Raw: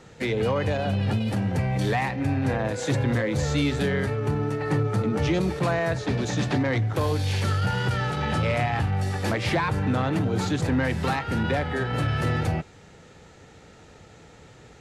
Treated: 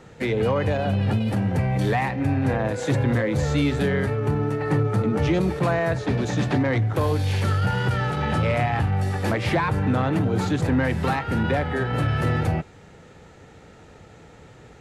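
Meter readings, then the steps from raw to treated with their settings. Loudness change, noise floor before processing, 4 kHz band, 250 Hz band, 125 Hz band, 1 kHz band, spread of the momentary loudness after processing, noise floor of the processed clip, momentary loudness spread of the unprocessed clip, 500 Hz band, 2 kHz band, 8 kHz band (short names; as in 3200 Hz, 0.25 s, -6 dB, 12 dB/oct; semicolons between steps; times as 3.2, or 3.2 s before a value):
+2.0 dB, -50 dBFS, -1.5 dB, +2.5 dB, +2.5 dB, +2.0 dB, 2 LU, -48 dBFS, 2 LU, +2.5 dB, +1.0 dB, -2.0 dB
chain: bell 5500 Hz -5.5 dB 1.9 oct; gain +2.5 dB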